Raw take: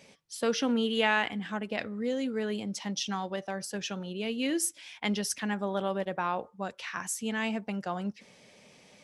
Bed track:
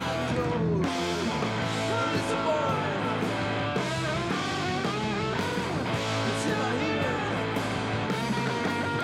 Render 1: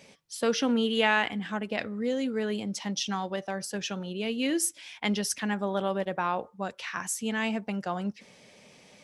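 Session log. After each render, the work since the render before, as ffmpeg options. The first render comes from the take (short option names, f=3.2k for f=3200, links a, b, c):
-af "volume=2dB"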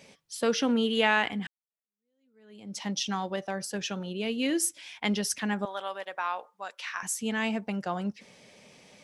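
-filter_complex "[0:a]asettb=1/sr,asplit=3[a][b][c];[a]atrim=end=5.654[d];[b]atrim=start=5.65:end=7.03,asetpts=PTS-STARTPTS,afade=t=in:d=0.004:c=qsin,afade=t=out:st=1.376:d=0.004:c=qsin,highpass=860[e];[c]atrim=start=7.026[f];[d][e]acrossfade=d=0.004:c1=hsin:c2=qsin[g];[g][f]acrossfade=d=0.004:c1=qsin:c2=hsin,asplit=2[h][i];[h]atrim=end=1.47,asetpts=PTS-STARTPTS,afade=t=out:st=1.466:d=0.004:c=hsin[j];[i]atrim=start=1.47,asetpts=PTS-STARTPTS,afade=t=in:d=1.32:c=exp[k];[j][k]concat=n=2:v=0:a=1"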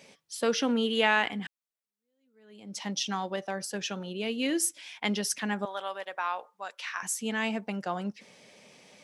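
-af "highpass=f=170:p=1"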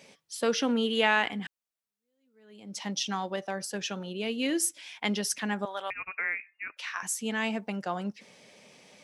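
-filter_complex "[0:a]asettb=1/sr,asplit=3[a][b][c];[a]atrim=end=5.904[d];[b]atrim=start=5.9:end=6.77,asetpts=PTS-STARTPTS,afade=t=in:d=0.004:c=qsin,afade=t=out:st=0.866:d=0.004:c=qsin,lowpass=f=2.6k:t=q:w=0.5098,lowpass=f=2.6k:t=q:w=0.6013,lowpass=f=2.6k:t=q:w=0.9,lowpass=f=2.6k:t=q:w=2.563,afreqshift=-3000[e];[c]atrim=start=6.766[f];[d][e]acrossfade=d=0.004:c1=hsin:c2=qsin[g];[g][f]acrossfade=d=0.004:c1=qsin:c2=hsin"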